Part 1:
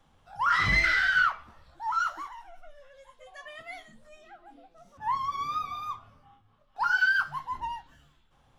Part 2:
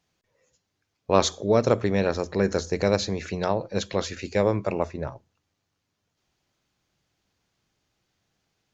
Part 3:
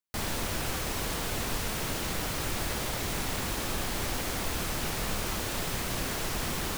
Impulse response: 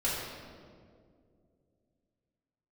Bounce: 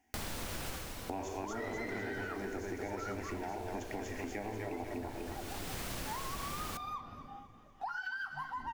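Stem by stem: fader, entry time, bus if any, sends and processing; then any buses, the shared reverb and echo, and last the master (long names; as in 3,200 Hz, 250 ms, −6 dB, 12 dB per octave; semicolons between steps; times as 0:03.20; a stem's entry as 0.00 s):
+1.0 dB, 1.05 s, bus A, no send, echo send −19.5 dB, no processing
−0.5 dB, 0.00 s, bus A, send −12.5 dB, echo send −4 dB, phaser with its sweep stopped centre 810 Hz, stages 8
+1.5 dB, 0.00 s, no bus, send −23 dB, no echo send, automatic ducking −21 dB, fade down 0.35 s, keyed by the second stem
bus A: 0.0 dB, hollow resonant body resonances 250/760/1,900 Hz, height 12 dB; downward compressor, threshold −28 dBFS, peak gain reduction 14 dB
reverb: on, RT60 2.3 s, pre-delay 3 ms
echo: repeating echo 247 ms, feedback 45%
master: downward compressor 4 to 1, threshold −39 dBFS, peak gain reduction 15 dB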